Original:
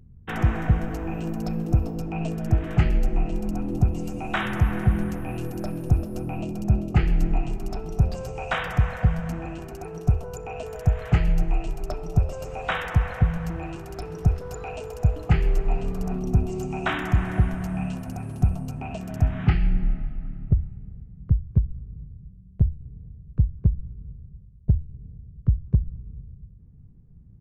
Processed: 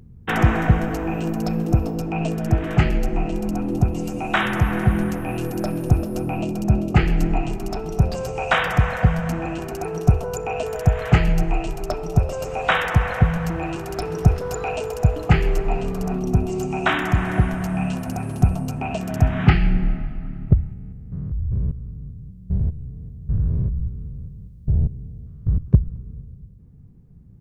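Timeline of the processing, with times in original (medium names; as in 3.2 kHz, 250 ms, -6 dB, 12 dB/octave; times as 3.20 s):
20.73–25.58 s: spectrogram pixelated in time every 200 ms
whole clip: bass shelf 120 Hz -8.5 dB; gain riding 2 s; trim +7.5 dB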